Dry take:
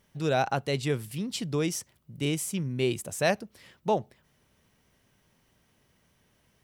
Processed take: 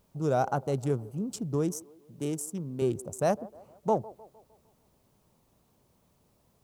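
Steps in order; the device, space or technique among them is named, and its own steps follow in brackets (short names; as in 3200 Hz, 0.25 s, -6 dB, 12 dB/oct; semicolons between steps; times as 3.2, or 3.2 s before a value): Wiener smoothing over 25 samples; band shelf 2800 Hz -14.5 dB; 1.79–2.82 HPF 250 Hz 6 dB/oct; noise-reduction cassette on a plain deck (mismatched tape noise reduction encoder only; wow and flutter; white noise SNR 42 dB); band-limited delay 0.153 s, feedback 48%, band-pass 580 Hz, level -19 dB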